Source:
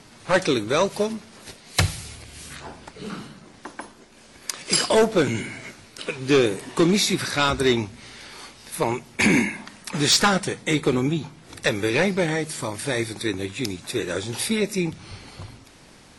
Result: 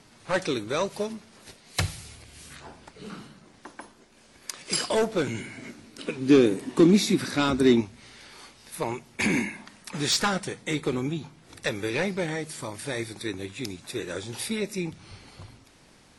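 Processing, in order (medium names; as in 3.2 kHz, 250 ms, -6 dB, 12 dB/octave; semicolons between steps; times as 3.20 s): 5.57–7.81 s: peaking EQ 260 Hz +12.5 dB 1.1 oct; trim -6.5 dB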